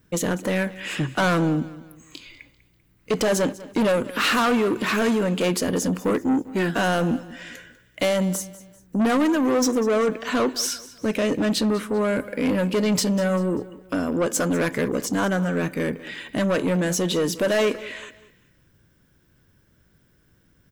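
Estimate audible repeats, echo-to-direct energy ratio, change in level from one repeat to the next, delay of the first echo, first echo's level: 3, −17.5 dB, −8.5 dB, 196 ms, −18.0 dB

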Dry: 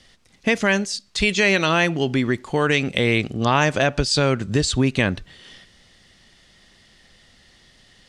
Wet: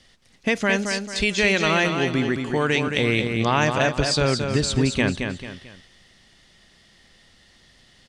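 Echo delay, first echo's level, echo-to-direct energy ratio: 221 ms, −6.0 dB, −5.5 dB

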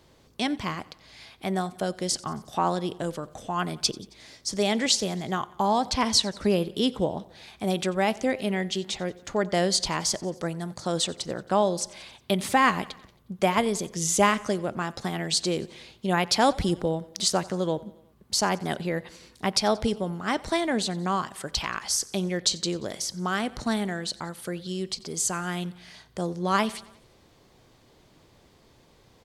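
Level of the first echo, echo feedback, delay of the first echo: −22.0 dB, 59%, 90 ms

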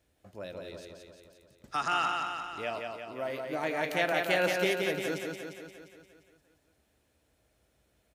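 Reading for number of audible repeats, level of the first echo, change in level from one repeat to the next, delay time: 7, −4.0 dB, −4.5 dB, 175 ms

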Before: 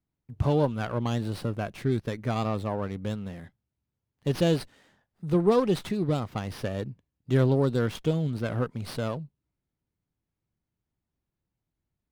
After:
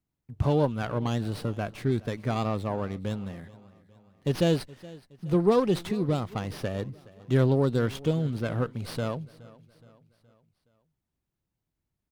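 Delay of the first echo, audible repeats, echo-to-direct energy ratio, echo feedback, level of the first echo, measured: 420 ms, 3, −20.0 dB, 49%, −21.0 dB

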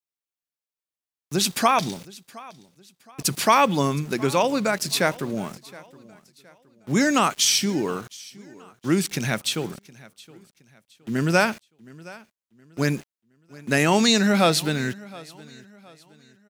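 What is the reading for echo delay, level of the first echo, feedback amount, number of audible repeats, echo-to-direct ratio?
718 ms, −21.5 dB, 36%, 2, −21.0 dB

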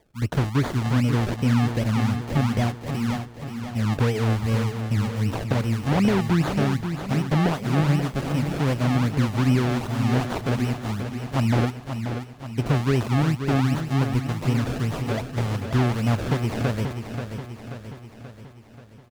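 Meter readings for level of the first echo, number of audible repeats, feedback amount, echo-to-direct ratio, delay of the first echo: −8.0 dB, 6, 55%, −6.5 dB, 533 ms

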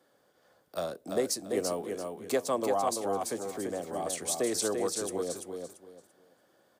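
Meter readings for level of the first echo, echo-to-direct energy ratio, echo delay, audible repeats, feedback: −5.0 dB, −4.5 dB, 339 ms, 3, 24%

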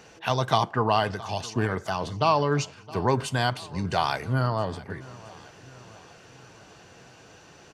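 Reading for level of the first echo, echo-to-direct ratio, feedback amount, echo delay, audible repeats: −20.0 dB, −18.5 dB, 54%, 667 ms, 3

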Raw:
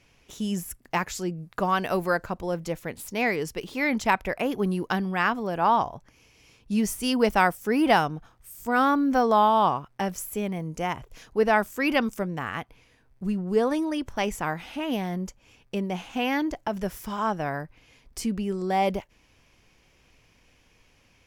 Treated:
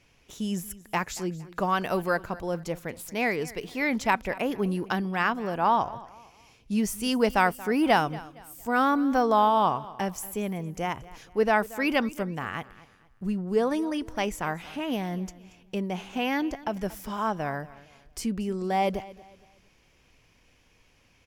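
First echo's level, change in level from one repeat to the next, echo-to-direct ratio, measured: −19.0 dB, −9.5 dB, −18.5 dB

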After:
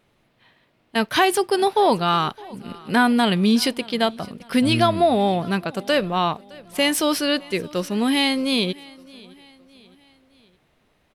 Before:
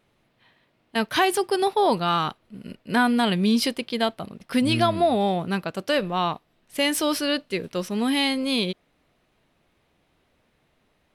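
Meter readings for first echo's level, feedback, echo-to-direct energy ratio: −23.0 dB, 47%, −22.0 dB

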